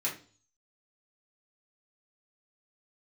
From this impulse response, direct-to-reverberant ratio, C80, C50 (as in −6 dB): −6.0 dB, 15.0 dB, 9.5 dB